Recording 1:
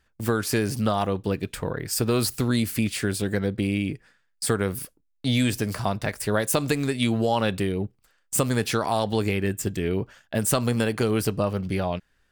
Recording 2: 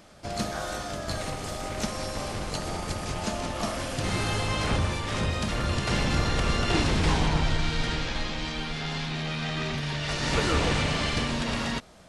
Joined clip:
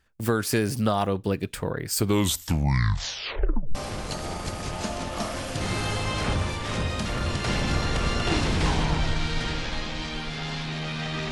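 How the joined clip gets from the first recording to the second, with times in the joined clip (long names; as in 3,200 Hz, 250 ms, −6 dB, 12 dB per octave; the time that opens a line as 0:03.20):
recording 1
0:01.88: tape stop 1.87 s
0:03.75: continue with recording 2 from 0:02.18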